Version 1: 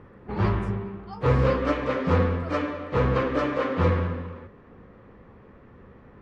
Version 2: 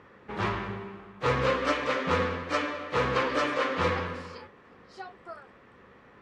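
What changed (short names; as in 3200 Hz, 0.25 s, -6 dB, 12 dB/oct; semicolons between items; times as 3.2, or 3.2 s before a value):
speech: entry +2.85 s; background: add tilt +3.5 dB/oct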